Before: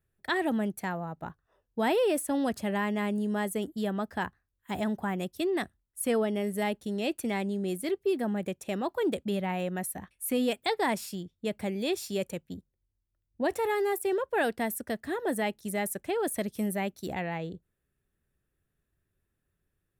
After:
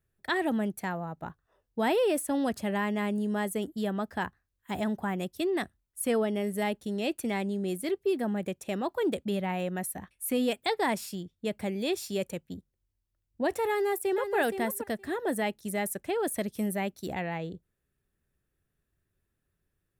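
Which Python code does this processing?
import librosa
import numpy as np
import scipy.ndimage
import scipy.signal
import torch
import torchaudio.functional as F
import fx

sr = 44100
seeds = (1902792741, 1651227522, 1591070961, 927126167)

y = fx.echo_throw(x, sr, start_s=13.69, length_s=0.67, ms=470, feedback_pct=10, wet_db=-8.0)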